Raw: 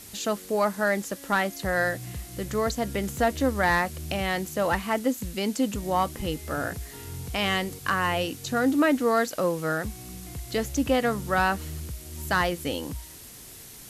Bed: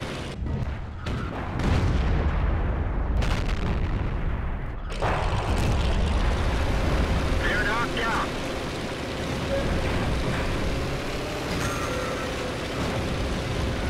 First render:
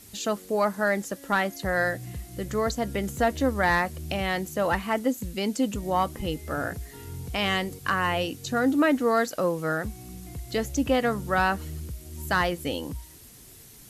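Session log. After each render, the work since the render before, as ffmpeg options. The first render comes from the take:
-af "afftdn=nr=6:nf=-45"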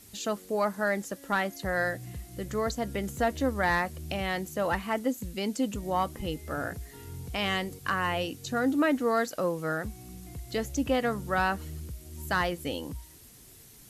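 -af "volume=0.668"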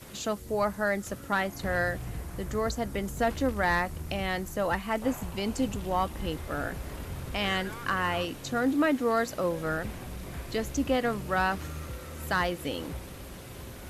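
-filter_complex "[1:a]volume=0.15[s0];[0:a][s0]amix=inputs=2:normalize=0"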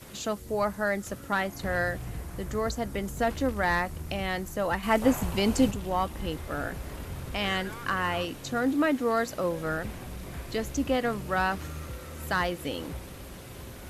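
-filter_complex "[0:a]asplit=3[s0][s1][s2];[s0]atrim=end=4.832[s3];[s1]atrim=start=4.828:end=5.712,asetpts=PTS-STARTPTS,volume=2[s4];[s2]atrim=start=5.708[s5];[s3][s4]acrossfade=d=0.004:c1=hsin:c2=hsin[s6];[s6][s5]acrossfade=d=0.004:c1=hsin:c2=hsin"

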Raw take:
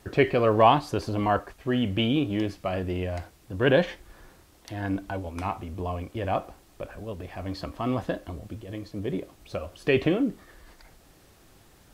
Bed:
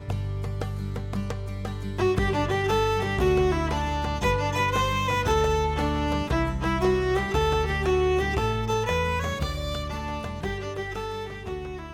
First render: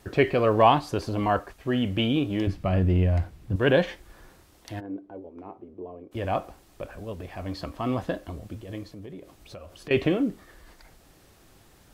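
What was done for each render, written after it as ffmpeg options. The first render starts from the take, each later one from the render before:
-filter_complex "[0:a]asettb=1/sr,asplit=3[s0][s1][s2];[s0]atrim=end=2.474[s3];[s1]atrim=start=2.47:end=3.56,asetpts=PTS-STARTPTS,afade=t=in:d=0.004:c=qsin,afade=t=out:st=1.086:d=0.004:c=qsin,bass=f=250:g=12,treble=f=4000:g=-6[s4];[s2]atrim=start=3.556[s5];[s3][s4]acrossfade=d=0.004:c1=hsin:c2=qsin[s6];[s6][s5]acrossfade=d=0.004:c1=qsin:c2=hsin,asplit=3[s7][s8][s9];[s7]afade=t=out:st=4.79:d=0.02[s10];[s8]bandpass=f=380:t=q:w=2.7,afade=t=in:st=4.79:d=0.02,afade=t=out:st=6.11:d=0.02[s11];[s9]afade=t=in:st=6.11:d=0.02[s12];[s10][s11][s12]amix=inputs=3:normalize=0,asettb=1/sr,asplit=3[s13][s14][s15];[s13]atrim=end=8.834[s16];[s14]atrim=start=8.83:end=9.91,asetpts=PTS-STARTPTS,afade=t=in:d=0.004:c=qsin,afade=t=out:st=1.076:d=0.004:c=qsin,acompressor=threshold=0.00891:ratio=3:attack=3.2:release=140:knee=1:detection=peak[s17];[s15]atrim=start=9.906[s18];[s16][s17]acrossfade=d=0.004:c1=hsin:c2=qsin[s19];[s19][s18]acrossfade=d=0.004:c1=qsin:c2=hsin"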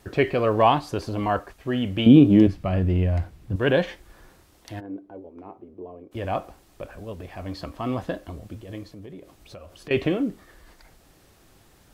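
-filter_complex "[0:a]asettb=1/sr,asplit=3[s0][s1][s2];[s0]atrim=end=2.064[s3];[s1]atrim=start=2.06:end=2.47,asetpts=PTS-STARTPTS,afade=t=in:d=0.004:c=qsin,afade=t=out:st=0.406:d=0.004:c=qsin,equalizer=f=210:t=o:w=2.5:g=15[s4];[s2]atrim=start=2.466[s5];[s3][s4]acrossfade=d=0.004:c1=hsin:c2=qsin[s6];[s6][s5]acrossfade=d=0.004:c1=qsin:c2=hsin"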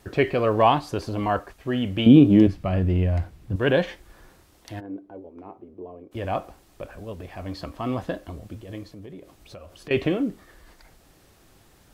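-af anull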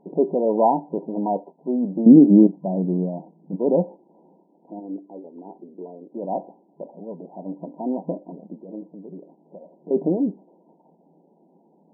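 -af "lowshelf=f=320:g=5.5,afftfilt=real='re*between(b*sr/4096,160,1000)':imag='im*between(b*sr/4096,160,1000)':win_size=4096:overlap=0.75"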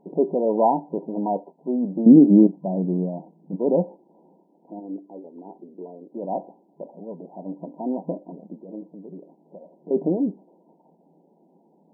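-af "volume=0.891"

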